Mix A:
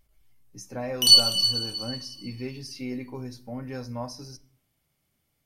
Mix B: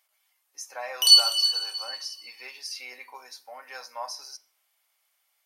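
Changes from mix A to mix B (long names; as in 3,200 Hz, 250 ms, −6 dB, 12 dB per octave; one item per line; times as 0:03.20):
speech +5.0 dB
master: add high-pass filter 760 Hz 24 dB per octave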